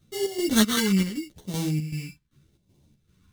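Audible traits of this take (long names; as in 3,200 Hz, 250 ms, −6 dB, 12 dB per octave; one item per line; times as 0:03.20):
aliases and images of a low sample rate 2,500 Hz, jitter 0%
phaser sweep stages 2, 0.82 Hz, lowest notch 610–1,300 Hz
chopped level 2.6 Hz, depth 60%, duty 65%
a shimmering, thickened sound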